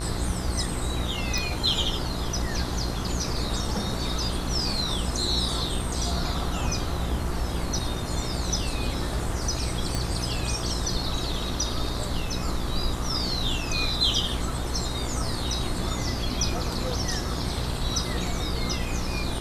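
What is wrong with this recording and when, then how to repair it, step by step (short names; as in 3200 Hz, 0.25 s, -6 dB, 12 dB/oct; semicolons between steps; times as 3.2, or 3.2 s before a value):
buzz 60 Hz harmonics 35 -32 dBFS
1.38 pop
9.95 pop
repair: de-click; de-hum 60 Hz, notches 35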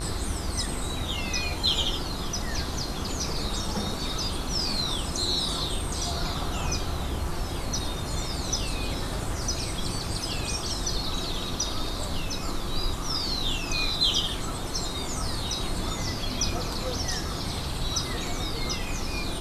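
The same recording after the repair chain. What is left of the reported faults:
none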